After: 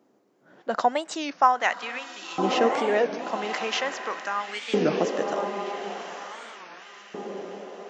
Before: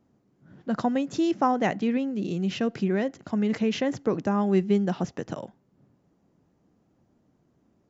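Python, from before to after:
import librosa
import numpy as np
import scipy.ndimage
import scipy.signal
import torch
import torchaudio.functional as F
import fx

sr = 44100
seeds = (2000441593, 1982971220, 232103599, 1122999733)

y = fx.echo_diffused(x, sr, ms=1110, feedback_pct=51, wet_db=-6.5)
y = fx.filter_lfo_highpass(y, sr, shape='saw_up', hz=0.42, low_hz=360.0, high_hz=1800.0, q=1.2)
y = fx.record_warp(y, sr, rpm=33.33, depth_cents=250.0)
y = y * 10.0 ** (5.5 / 20.0)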